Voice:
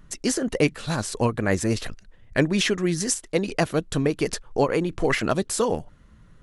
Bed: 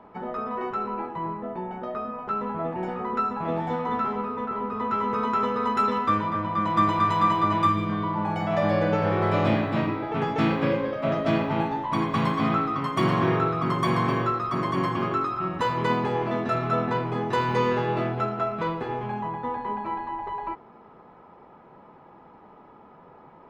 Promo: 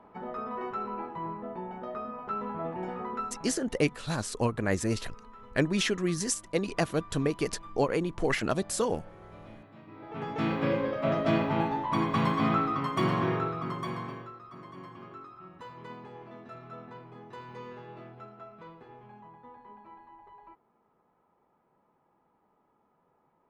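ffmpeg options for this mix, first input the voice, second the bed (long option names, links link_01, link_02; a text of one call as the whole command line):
ffmpeg -i stem1.wav -i stem2.wav -filter_complex "[0:a]adelay=3200,volume=-5.5dB[link_01];[1:a]volume=19dB,afade=type=out:start_time=3.01:duration=0.56:silence=0.0841395,afade=type=in:start_time=9.86:duration=0.99:silence=0.0595662,afade=type=out:start_time=12.7:duration=1.59:silence=0.125893[link_02];[link_01][link_02]amix=inputs=2:normalize=0" out.wav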